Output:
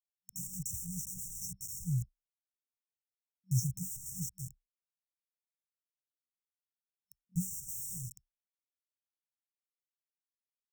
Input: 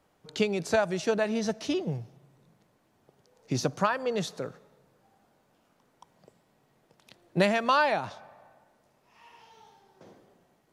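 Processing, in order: bit-crush 6-bit; FFT band-reject 190–5400 Hz; ripple EQ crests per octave 1, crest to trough 9 dB

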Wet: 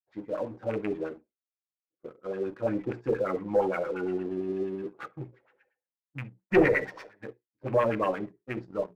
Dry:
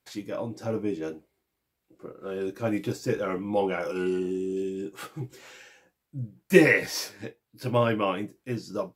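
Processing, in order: rattling part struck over -29 dBFS, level -23 dBFS; notches 60/120/180/240/300/360/420 Hz; expander -40 dBFS; tube stage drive 9 dB, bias 0.7; LFO low-pass sine 8.6 Hz 480–2000 Hz; on a send at -17.5 dB: reverb, pre-delay 8 ms; on the sum: sample leveller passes 1; gain -3.5 dB

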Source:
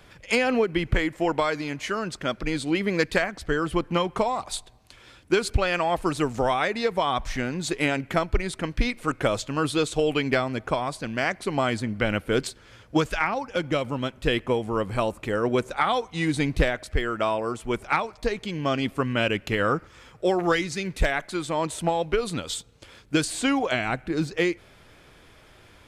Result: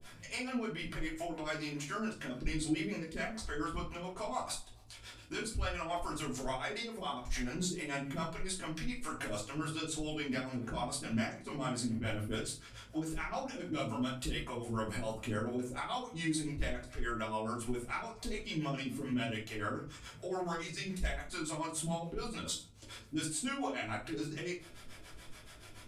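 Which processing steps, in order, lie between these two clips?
bell 9100 Hz +11.5 dB 2 oct; compressor, threshold -28 dBFS, peak gain reduction 12.5 dB; limiter -24 dBFS, peak gain reduction 9.5 dB; harmonic tremolo 7 Hz, depth 100%, crossover 450 Hz; shoebox room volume 200 m³, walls furnished, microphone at 3 m; gain -6 dB

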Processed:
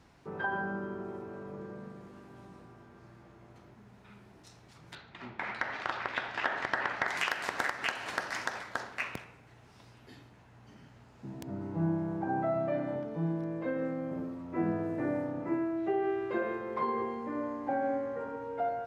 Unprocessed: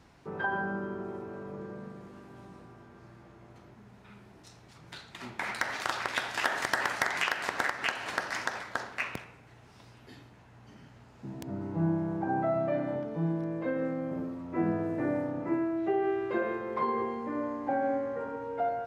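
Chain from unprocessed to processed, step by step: 4.95–7.08 LPF 3000 Hz 12 dB/oct; gain -2 dB

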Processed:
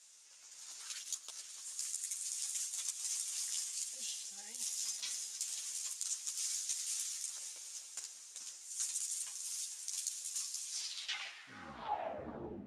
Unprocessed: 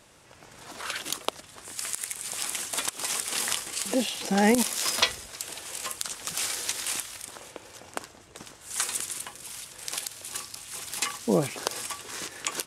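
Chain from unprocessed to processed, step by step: tape stop at the end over 2.09 s; low shelf 150 Hz +4 dB; notch 7900 Hz, Q 19; reverse; compressor 5:1, threshold -36 dBFS, peak gain reduction 19 dB; reverse; diffused feedback echo 0.501 s, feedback 57%, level -11 dB; band-pass sweep 6800 Hz -> 240 Hz, 10.64–12.62; reverb RT60 0.85 s, pre-delay 0.101 s, DRR 15 dB; ensemble effect; gain +7.5 dB

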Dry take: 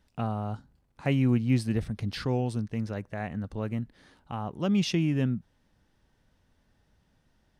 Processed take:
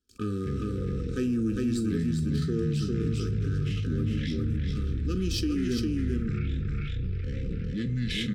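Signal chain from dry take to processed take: gate with hold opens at -54 dBFS; power-law curve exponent 1.4; fixed phaser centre 610 Hz, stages 6; notch comb 770 Hz; varispeed -9%; bell 6600 Hz +5 dB 1 oct; echoes that change speed 0.147 s, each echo -7 st, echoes 3; brick-wall FIR band-stop 520–1200 Hz; echo 0.404 s -3.5 dB; on a send at -10.5 dB: reverb, pre-delay 6 ms; on the sum: fast leveller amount 70%

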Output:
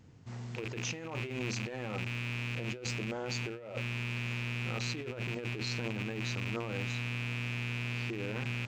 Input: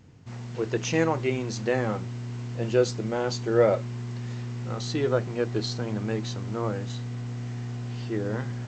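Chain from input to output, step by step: rattling part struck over -33 dBFS, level -22 dBFS; negative-ratio compressor -30 dBFS, ratio -1; gain -7 dB

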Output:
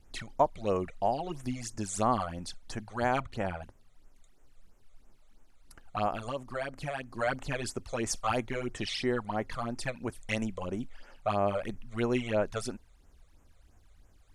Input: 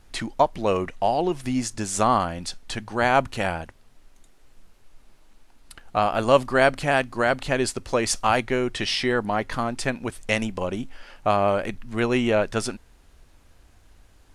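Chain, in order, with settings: 3.2–3.62 high shelf 5100 Hz -11 dB; 6.11–7.19 compressor 6:1, threshold -23 dBFS, peak gain reduction 12 dB; phaser stages 12, 3 Hz, lowest notch 270–4400 Hz; gain -6.5 dB

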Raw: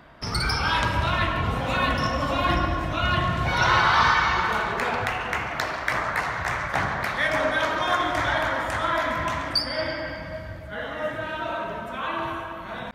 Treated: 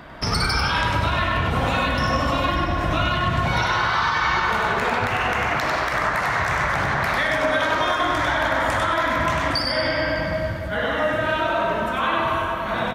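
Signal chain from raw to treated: compressor, threshold -27 dBFS, peak gain reduction 11.5 dB; limiter -21.5 dBFS, peak gain reduction 8.5 dB; echo 98 ms -3.5 dB; gain +8.5 dB

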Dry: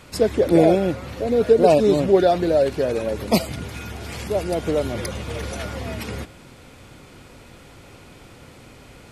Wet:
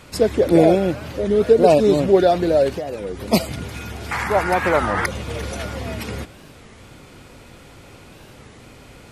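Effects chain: 2.75–3.33 compressor 6:1, threshold -26 dBFS, peak gain reduction 9 dB; 4.11–5.06 band shelf 1300 Hz +15.5 dB; record warp 33 1/3 rpm, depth 250 cents; gain +1.5 dB

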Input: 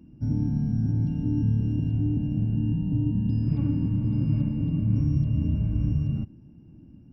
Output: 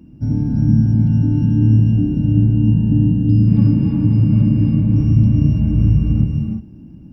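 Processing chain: non-linear reverb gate 0.38 s rising, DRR 1 dB; gain +7.5 dB

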